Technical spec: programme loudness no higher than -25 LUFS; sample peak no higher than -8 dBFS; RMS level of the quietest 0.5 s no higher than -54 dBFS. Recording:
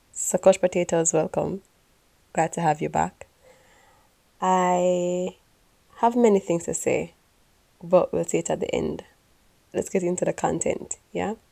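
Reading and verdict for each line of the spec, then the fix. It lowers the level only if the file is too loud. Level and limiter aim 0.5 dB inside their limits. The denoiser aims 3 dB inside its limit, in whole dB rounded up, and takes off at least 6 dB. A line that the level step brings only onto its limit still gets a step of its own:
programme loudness -24.0 LUFS: fail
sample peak -4.0 dBFS: fail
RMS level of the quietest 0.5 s -62 dBFS: OK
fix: gain -1.5 dB; limiter -8.5 dBFS

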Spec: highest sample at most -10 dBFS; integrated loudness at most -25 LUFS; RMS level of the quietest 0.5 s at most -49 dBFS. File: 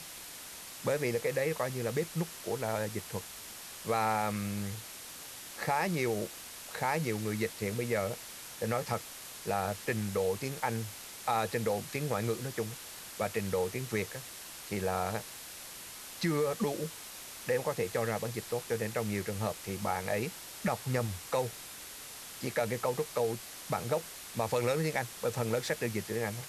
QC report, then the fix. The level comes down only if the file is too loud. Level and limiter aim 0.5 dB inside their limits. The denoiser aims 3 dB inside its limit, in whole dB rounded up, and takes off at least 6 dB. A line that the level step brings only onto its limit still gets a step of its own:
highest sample -17.5 dBFS: OK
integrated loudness -34.5 LUFS: OK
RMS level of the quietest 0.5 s -46 dBFS: fail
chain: denoiser 6 dB, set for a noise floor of -46 dBFS

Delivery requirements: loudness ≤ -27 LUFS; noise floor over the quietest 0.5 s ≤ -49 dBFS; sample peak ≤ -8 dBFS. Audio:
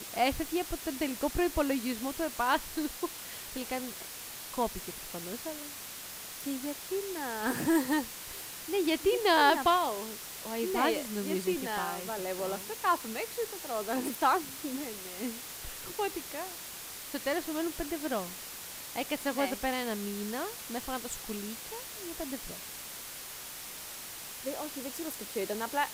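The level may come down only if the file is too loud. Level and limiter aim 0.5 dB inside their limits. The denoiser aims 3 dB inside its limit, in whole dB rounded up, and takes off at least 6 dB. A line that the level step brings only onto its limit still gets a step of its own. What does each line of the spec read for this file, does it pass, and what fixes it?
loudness -33.5 LUFS: OK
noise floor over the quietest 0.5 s -44 dBFS: fail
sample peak -13.0 dBFS: OK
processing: denoiser 8 dB, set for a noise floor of -44 dBFS

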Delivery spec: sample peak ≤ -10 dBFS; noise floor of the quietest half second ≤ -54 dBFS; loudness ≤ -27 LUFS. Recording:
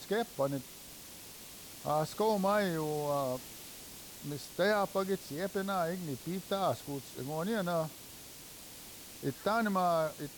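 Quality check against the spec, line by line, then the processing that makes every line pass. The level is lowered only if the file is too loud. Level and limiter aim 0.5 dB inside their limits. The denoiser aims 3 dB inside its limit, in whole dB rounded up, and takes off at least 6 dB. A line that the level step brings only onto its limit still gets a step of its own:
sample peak -20.0 dBFS: OK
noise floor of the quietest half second -50 dBFS: fail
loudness -34.0 LUFS: OK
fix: denoiser 7 dB, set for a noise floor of -50 dBFS

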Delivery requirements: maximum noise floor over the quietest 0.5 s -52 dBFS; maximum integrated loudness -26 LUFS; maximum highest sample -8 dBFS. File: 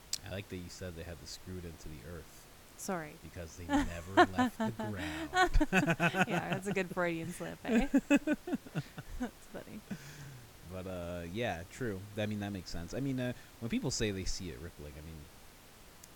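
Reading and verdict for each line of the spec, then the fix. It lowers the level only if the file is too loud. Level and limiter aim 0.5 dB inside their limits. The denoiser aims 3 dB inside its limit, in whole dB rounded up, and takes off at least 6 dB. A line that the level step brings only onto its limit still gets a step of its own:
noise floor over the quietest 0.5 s -56 dBFS: OK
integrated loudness -35.0 LUFS: OK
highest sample -12.0 dBFS: OK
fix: none

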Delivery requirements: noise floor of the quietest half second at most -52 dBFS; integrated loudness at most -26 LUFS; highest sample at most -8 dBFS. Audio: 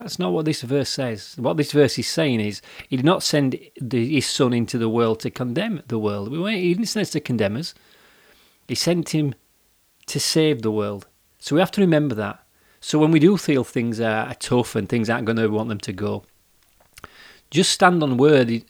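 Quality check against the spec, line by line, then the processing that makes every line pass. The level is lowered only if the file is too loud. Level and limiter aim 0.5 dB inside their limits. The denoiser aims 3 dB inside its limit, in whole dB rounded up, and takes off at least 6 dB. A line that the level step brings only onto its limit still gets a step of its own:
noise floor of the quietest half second -62 dBFS: OK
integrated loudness -21.0 LUFS: fail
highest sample -1.5 dBFS: fail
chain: gain -5.5 dB; limiter -8.5 dBFS

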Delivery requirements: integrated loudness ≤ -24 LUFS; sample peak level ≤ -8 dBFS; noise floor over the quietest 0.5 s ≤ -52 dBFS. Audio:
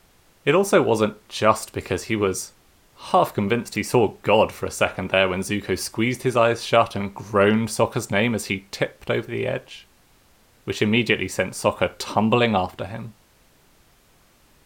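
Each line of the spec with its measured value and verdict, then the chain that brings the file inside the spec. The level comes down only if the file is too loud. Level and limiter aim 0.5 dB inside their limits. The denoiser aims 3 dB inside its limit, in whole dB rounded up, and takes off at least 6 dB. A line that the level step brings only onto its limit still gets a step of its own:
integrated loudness -22.0 LUFS: fail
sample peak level -3.5 dBFS: fail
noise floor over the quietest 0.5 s -57 dBFS: OK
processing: gain -2.5 dB; limiter -8.5 dBFS

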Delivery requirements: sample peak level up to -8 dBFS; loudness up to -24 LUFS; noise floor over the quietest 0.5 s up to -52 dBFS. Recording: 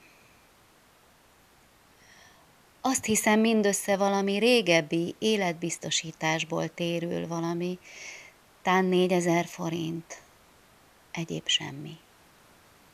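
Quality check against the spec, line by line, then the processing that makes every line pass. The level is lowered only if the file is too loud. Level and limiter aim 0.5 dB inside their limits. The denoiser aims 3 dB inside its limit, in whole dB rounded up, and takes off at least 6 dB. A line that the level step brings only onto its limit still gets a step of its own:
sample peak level -6.0 dBFS: fail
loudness -26.5 LUFS: OK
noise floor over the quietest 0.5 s -60 dBFS: OK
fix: limiter -8.5 dBFS

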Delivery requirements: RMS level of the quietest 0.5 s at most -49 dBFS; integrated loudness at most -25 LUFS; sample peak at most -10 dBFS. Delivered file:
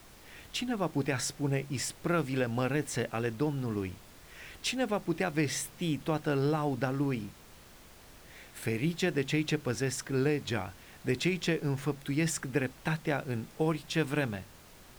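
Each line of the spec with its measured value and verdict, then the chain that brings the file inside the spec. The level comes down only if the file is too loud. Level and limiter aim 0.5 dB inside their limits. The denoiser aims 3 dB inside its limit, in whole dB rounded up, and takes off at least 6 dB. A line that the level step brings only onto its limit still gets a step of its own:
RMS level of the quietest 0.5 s -54 dBFS: OK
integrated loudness -32.0 LUFS: OK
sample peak -15.5 dBFS: OK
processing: none

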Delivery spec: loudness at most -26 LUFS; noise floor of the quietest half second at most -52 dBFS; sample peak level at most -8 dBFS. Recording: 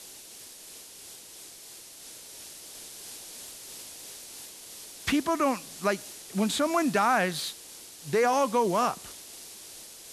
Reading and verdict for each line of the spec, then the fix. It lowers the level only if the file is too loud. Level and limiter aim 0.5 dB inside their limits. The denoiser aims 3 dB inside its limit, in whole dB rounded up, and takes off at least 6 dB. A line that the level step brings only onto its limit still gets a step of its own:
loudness -28.0 LUFS: OK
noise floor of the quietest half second -47 dBFS: fail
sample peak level -13.0 dBFS: OK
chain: denoiser 8 dB, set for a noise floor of -47 dBFS

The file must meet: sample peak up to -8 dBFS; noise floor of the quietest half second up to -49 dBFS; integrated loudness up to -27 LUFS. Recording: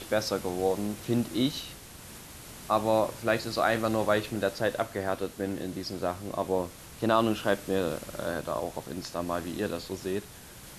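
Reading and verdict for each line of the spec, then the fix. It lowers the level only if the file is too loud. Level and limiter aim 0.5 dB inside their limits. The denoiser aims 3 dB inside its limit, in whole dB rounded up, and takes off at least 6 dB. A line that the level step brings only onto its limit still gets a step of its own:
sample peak -9.5 dBFS: OK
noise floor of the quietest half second -47 dBFS: fail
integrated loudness -30.0 LUFS: OK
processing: denoiser 6 dB, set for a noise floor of -47 dBFS

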